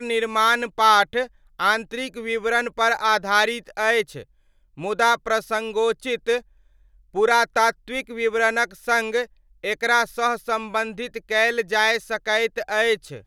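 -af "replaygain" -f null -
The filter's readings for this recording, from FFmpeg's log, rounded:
track_gain = +1.5 dB
track_peak = 0.445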